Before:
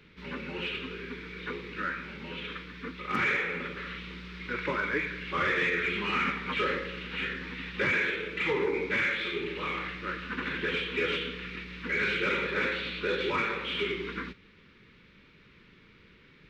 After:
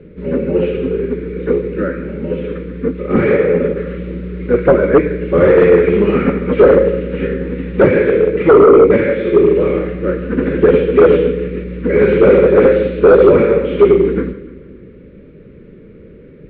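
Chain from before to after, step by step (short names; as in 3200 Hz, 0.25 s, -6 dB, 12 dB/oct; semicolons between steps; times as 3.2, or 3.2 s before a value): resonant low shelf 710 Hz +9.5 dB, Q 3; split-band echo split 300 Hz, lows 0.263 s, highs 0.147 s, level -14.5 dB; on a send at -19.5 dB: reverb RT60 0.70 s, pre-delay 3 ms; on the sum: sine folder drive 7 dB, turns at -6 dBFS; LPF 1400 Hz 12 dB/oct; upward expander 1.5:1, over -20 dBFS; gain +4.5 dB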